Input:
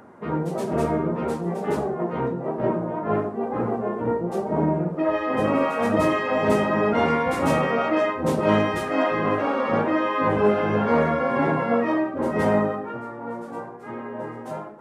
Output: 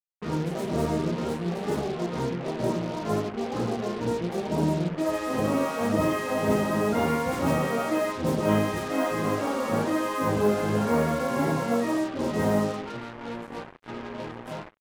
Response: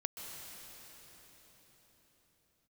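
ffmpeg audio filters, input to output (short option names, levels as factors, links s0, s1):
-af "lowshelf=f=280:g=6.5,acrusher=bits=4:mix=0:aa=0.5,volume=0.501"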